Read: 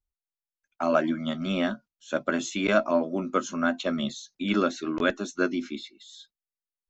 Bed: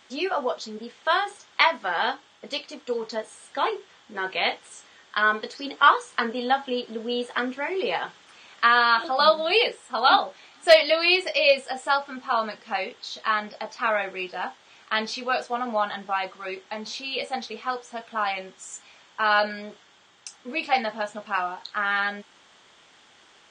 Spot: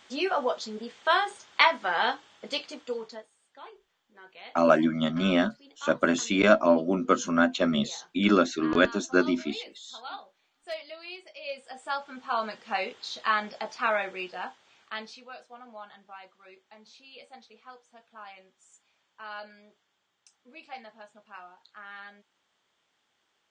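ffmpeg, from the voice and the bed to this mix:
-filter_complex "[0:a]adelay=3750,volume=3dB[a];[1:a]volume=19.5dB,afade=t=out:st=2.66:d=0.64:silence=0.0891251,afade=t=in:st=11.41:d=1.43:silence=0.0944061,afade=t=out:st=13.74:d=1.56:silence=0.125893[b];[a][b]amix=inputs=2:normalize=0"

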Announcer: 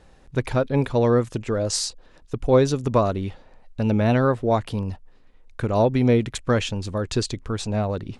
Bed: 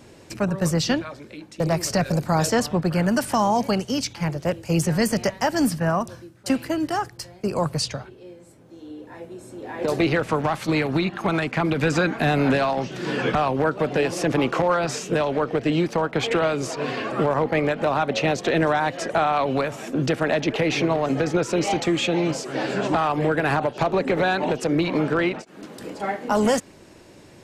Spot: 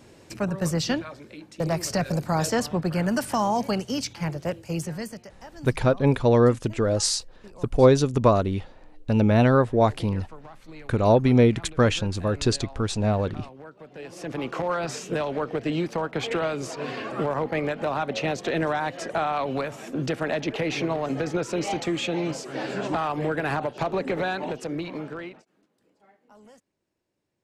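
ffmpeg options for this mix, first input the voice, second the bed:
-filter_complex "[0:a]adelay=5300,volume=1dB[a];[1:a]volume=14dB,afade=t=out:st=4.35:d=0.91:silence=0.112202,afade=t=in:st=13.92:d=0.91:silence=0.133352,afade=t=out:st=24.08:d=1.59:silence=0.0421697[b];[a][b]amix=inputs=2:normalize=0"

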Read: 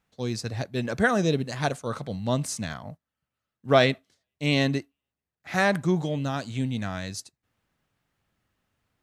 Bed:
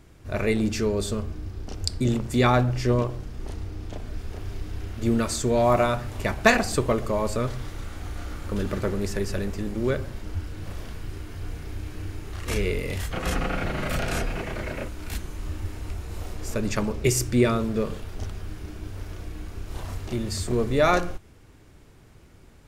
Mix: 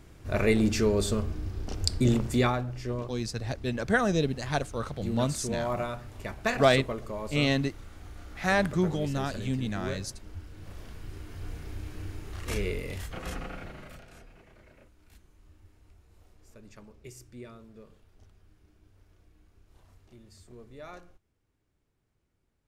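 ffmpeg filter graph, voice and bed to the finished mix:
-filter_complex "[0:a]adelay=2900,volume=-2.5dB[a];[1:a]volume=6.5dB,afade=t=out:st=2.25:d=0.32:silence=0.281838,afade=t=in:st=10.48:d=1.04:silence=0.473151,afade=t=out:st=12.47:d=1.58:silence=0.0944061[b];[a][b]amix=inputs=2:normalize=0"

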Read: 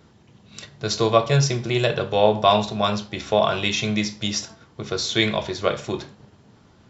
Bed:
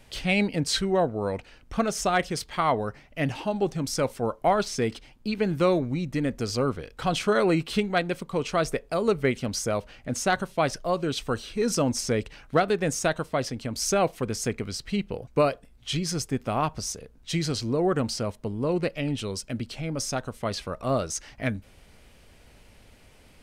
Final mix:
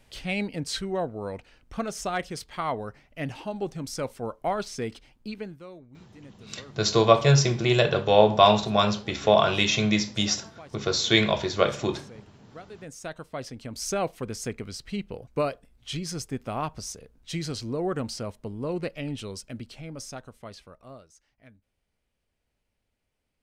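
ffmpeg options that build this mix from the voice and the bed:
-filter_complex "[0:a]adelay=5950,volume=0dB[a];[1:a]volume=12.5dB,afade=t=out:st=5.22:d=0.38:silence=0.141254,afade=t=in:st=12.67:d=1.21:silence=0.125893,afade=t=out:st=19.17:d=1.92:silence=0.0841395[b];[a][b]amix=inputs=2:normalize=0"

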